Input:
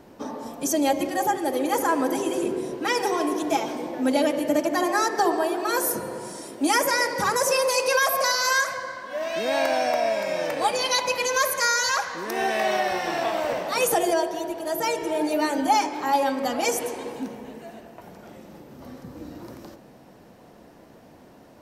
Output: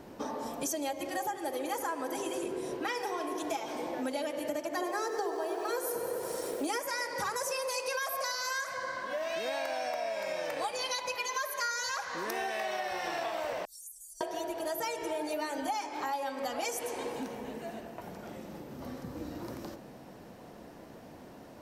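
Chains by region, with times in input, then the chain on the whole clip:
0:02.77–0:03.38: parametric band 8,100 Hz −5 dB 1.5 octaves + flutter between parallel walls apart 6.7 metres, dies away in 0.2 s
0:04.77–0:06.80: parametric band 450 Hz +13 dB 0.59 octaves + feedback echo at a low word length 96 ms, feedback 80%, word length 7 bits, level −12 dB
0:11.16–0:11.71: high-pass filter 300 Hz + parametric band 8,600 Hz −7 dB 0.94 octaves + comb filter 4.9 ms, depth 75%
0:13.65–0:14.21: inverse Chebyshev band-stop filter 110–2,600 Hz, stop band 60 dB + high-shelf EQ 8,900 Hz −7.5 dB + downward compressor 5 to 1, threshold −45 dBFS
whole clip: dynamic equaliser 210 Hz, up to −8 dB, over −40 dBFS, Q 0.84; downward compressor 6 to 1, threshold −32 dBFS

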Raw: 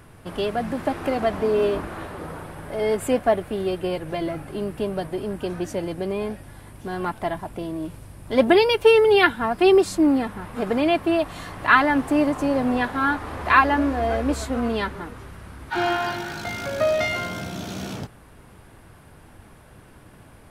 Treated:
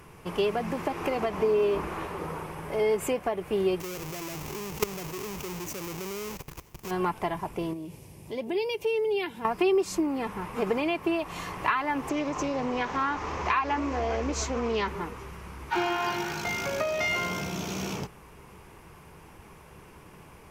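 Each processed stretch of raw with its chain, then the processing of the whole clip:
0:03.80–0:06.91: each half-wave held at its own peak + high-shelf EQ 5,100 Hz +9 dB + output level in coarse steps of 18 dB
0:07.73–0:09.45: high-pass filter 82 Hz + parametric band 1,300 Hz −13 dB 1 octave + downward compressor 2 to 1, threshold −37 dBFS
0:12.09–0:14.88: high shelf with overshoot 8,000 Hz −9 dB, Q 3 + downward compressor 1.5 to 1, threshold −25 dBFS + highs frequency-modulated by the lows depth 0.21 ms
whole clip: low-shelf EQ 220 Hz −5 dB; downward compressor 10 to 1, threshold −23 dBFS; EQ curve with evenly spaced ripples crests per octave 0.77, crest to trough 7 dB

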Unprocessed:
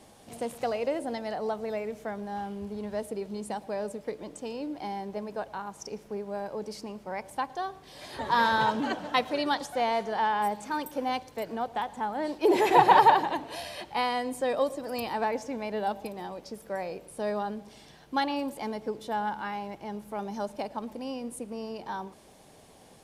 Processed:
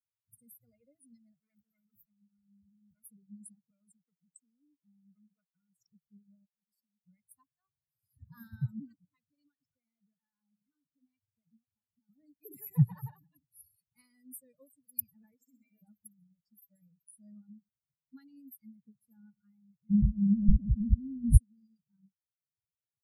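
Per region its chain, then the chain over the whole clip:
0:01.37–0:03.03: transient designer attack −1 dB, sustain +10 dB + mains-hum notches 60/120/180/240/300/360/420/480 Hz + saturating transformer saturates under 2,300 Hz
0:03.70–0:05.77: Butterworth high-pass 160 Hz 48 dB per octave + saturating transformer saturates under 1,300 Hz
0:06.45–0:07.03: parametric band 77 Hz −9 dB 2.1 octaves + downward compressor 3 to 1, threshold −43 dBFS
0:08.95–0:12.09: low-pass filter 4,800 Hz 24 dB per octave + downward compressor 2.5 to 1, threshold −36 dBFS
0:15.34–0:15.82: high-pass filter 340 Hz 6 dB per octave + flutter between parallel walls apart 10.9 metres, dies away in 1.4 s
0:19.90–0:21.37: spectral tilt −4 dB per octave + level that may fall only so fast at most 28 dB per second
whole clip: spectral dynamics exaggerated over time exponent 3; inverse Chebyshev band-stop filter 320–6,600 Hz, stop band 40 dB; bass and treble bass +10 dB, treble +1 dB; level +11.5 dB

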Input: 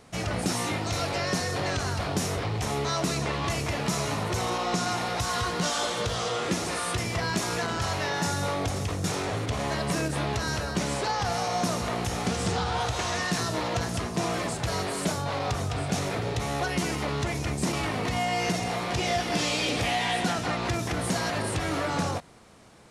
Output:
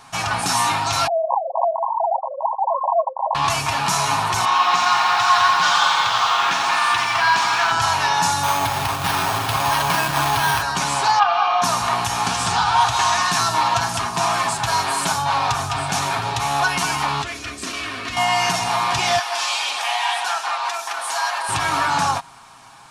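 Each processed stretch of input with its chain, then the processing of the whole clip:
0:01.07–0:03.35: three sine waves on the formant tracks + linear-phase brick-wall band-pass 510–1,100 Hz + spectral tilt −4.5 dB per octave
0:04.45–0:07.72: low-pass filter 2,700 Hz + spectral tilt +3.5 dB per octave + feedback echo at a low word length 87 ms, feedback 80%, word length 9 bits, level −7 dB
0:08.43–0:10.62: log-companded quantiser 4 bits + delay that swaps between a low-pass and a high-pass 181 ms, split 830 Hz, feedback 52%, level −4.5 dB + bad sample-rate conversion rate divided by 6×, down none, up hold
0:11.19–0:11.62: loudspeaker in its box 400–3,200 Hz, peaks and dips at 420 Hz −8 dB, 600 Hz +5 dB, 880 Hz −6 dB, 1,200 Hz +4 dB, 1,900 Hz −8 dB, 3,000 Hz +3 dB + comb filter 2.5 ms, depth 72%
0:17.22–0:18.17: low-pass filter 3,600 Hz 6 dB per octave + phaser with its sweep stopped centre 360 Hz, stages 4
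0:19.19–0:21.49: high-pass filter 500 Hz 24 dB per octave + flanger 1.8 Hz, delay 3.3 ms, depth 8.1 ms, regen −65%
whole clip: low shelf with overshoot 670 Hz −9.5 dB, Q 3; notch filter 2,000 Hz, Q 8.8; comb filter 7.4 ms, depth 47%; level +9 dB

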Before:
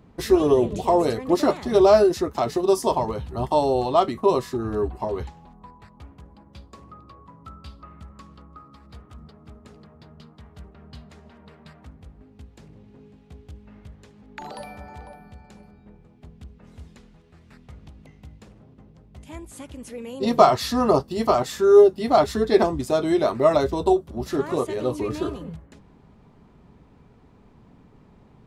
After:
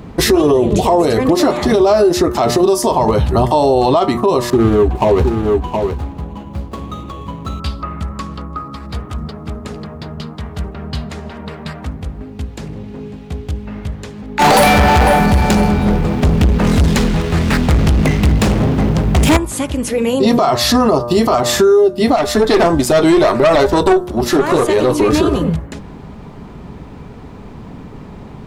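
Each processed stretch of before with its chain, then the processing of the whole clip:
0:04.50–0:07.60: running median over 25 samples + single-tap delay 716 ms −9.5 dB
0:14.39–0:19.37: leveller curve on the samples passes 5 + single-tap delay 747 ms −18.5 dB
0:22.16–0:25.13: low-shelf EQ 220 Hz −7.5 dB + tube saturation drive 20 dB, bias 0.45
whole clip: hum removal 119.6 Hz, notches 15; downward compressor 6 to 1, threshold −25 dBFS; boost into a limiter +23 dB; level −3 dB

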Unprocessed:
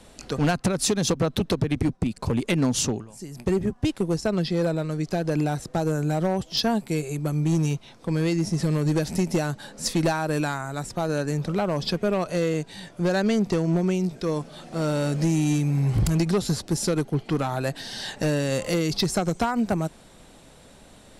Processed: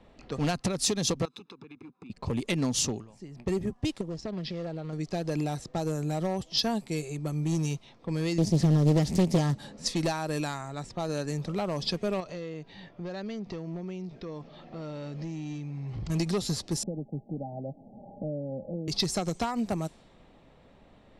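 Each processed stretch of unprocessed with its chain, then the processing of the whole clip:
0:01.25–0:02.10: high-pass filter 340 Hz + comb filter 0.8 ms, depth 93% + downward compressor 5 to 1, threshold −39 dBFS
0:04.01–0:04.93: downward compressor 5 to 1, threshold −25 dBFS + high-frequency loss of the air 52 metres + highs frequency-modulated by the lows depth 0.32 ms
0:08.38–0:09.77: high-pass filter 57 Hz 6 dB per octave + low-shelf EQ 280 Hz +12 dB + highs frequency-modulated by the lows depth 0.74 ms
0:12.20–0:16.10: low-pass filter 6,400 Hz 24 dB per octave + downward compressor 3 to 1, threshold −30 dBFS
0:16.83–0:18.88: Chebyshev low-pass with heavy ripple 840 Hz, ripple 9 dB + multiband upward and downward compressor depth 40%
whole clip: notch filter 1,500 Hz, Q 8.6; low-pass that shuts in the quiet parts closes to 2,300 Hz, open at −20.5 dBFS; dynamic equaliser 4,900 Hz, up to +5 dB, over −44 dBFS, Q 0.83; level −6 dB

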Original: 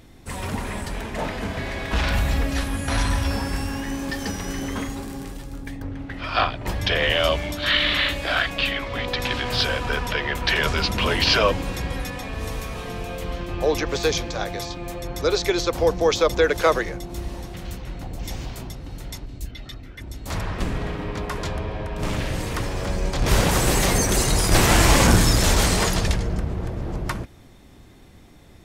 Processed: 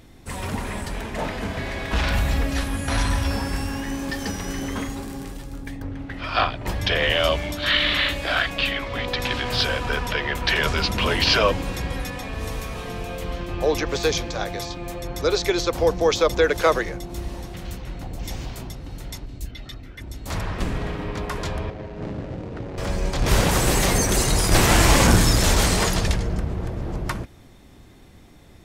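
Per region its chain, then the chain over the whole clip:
0:21.70–0:22.78: running median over 41 samples + high-pass filter 150 Hz 6 dB per octave + high-frequency loss of the air 100 metres
whole clip: no processing

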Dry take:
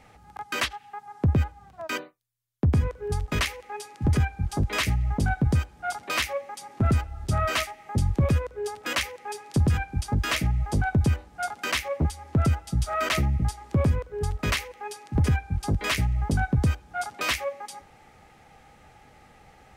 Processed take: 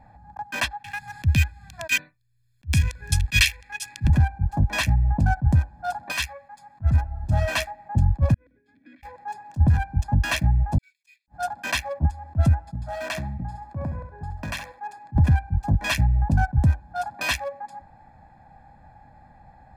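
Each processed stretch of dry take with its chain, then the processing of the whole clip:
0:00.84–0:04.10: drawn EQ curve 100 Hz 0 dB, 850 Hz −13 dB, 2,300 Hz +13 dB + multiband upward and downward compressor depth 70%
0:06.12–0:06.94: parametric band 410 Hz −13.5 dB 2.5 octaves + double-tracking delay 13 ms −12 dB
0:08.34–0:09.03: notch filter 1,300 Hz, Q 22 + compressor whose output falls as the input rises −34 dBFS + formant filter i
0:10.78–0:11.28: mu-law and A-law mismatch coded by mu + Butterworth high-pass 2,200 Hz 72 dB per octave + noise gate −52 dBFS, range −11 dB
0:12.74–0:14.98: repeating echo 68 ms, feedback 30%, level −10 dB + downward compressor 2.5 to 1, threshold −27 dBFS + low-shelf EQ 100 Hz −12 dB
whole clip: adaptive Wiener filter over 15 samples; comb filter 1.2 ms, depth 90%; level that may rise only so fast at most 500 dB per second

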